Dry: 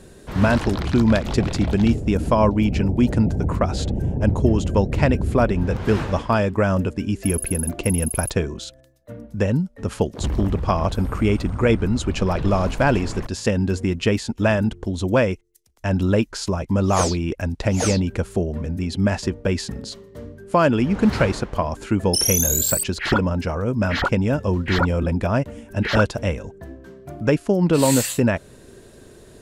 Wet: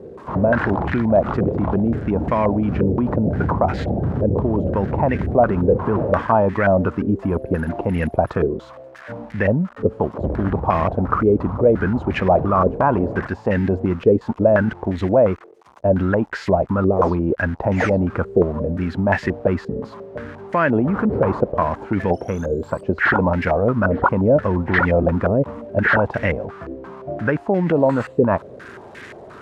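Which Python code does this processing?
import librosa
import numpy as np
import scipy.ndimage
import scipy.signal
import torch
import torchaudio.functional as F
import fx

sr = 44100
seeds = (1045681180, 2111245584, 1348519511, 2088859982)

p1 = x + 0.5 * 10.0 ** (-21.5 / 20.0) * np.diff(np.sign(x), prepend=np.sign(x[:1]))
p2 = fx.over_compress(p1, sr, threshold_db=-20.0, ratio=-0.5)
p3 = p1 + F.gain(torch.from_numpy(p2), 2.0).numpy()
p4 = scipy.signal.sosfilt(scipy.signal.butter(2, 83.0, 'highpass', fs=sr, output='sos'), p3)
p5 = fx.filter_held_lowpass(p4, sr, hz=5.7, low_hz=470.0, high_hz=1900.0)
y = F.gain(torch.from_numpy(p5), -5.5).numpy()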